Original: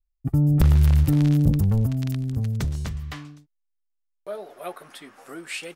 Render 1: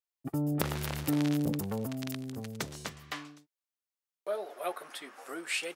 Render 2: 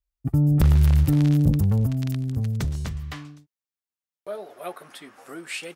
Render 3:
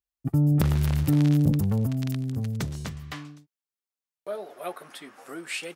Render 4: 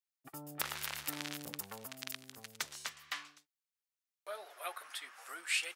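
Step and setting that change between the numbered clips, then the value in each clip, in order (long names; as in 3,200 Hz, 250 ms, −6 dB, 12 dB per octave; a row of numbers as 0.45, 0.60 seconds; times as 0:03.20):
high-pass filter, corner frequency: 350, 40, 130, 1,200 Hertz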